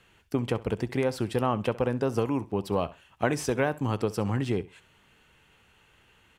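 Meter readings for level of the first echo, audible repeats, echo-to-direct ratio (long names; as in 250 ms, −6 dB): −19.0 dB, 2, −19.0 dB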